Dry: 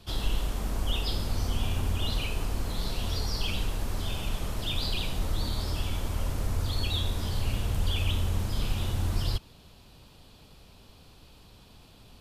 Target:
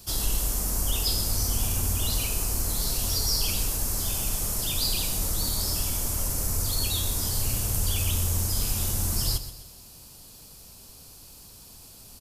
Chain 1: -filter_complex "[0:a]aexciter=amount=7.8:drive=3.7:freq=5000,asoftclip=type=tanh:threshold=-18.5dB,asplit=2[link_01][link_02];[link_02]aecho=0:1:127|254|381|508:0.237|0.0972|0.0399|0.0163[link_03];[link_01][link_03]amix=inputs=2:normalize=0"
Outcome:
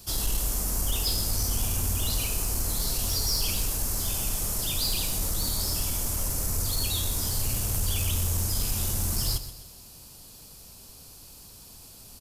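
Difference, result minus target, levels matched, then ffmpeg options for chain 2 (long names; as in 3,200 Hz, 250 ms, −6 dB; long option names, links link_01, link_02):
soft clipping: distortion +12 dB
-filter_complex "[0:a]aexciter=amount=7.8:drive=3.7:freq=5000,asoftclip=type=tanh:threshold=-11dB,asplit=2[link_01][link_02];[link_02]aecho=0:1:127|254|381|508:0.237|0.0972|0.0399|0.0163[link_03];[link_01][link_03]amix=inputs=2:normalize=0"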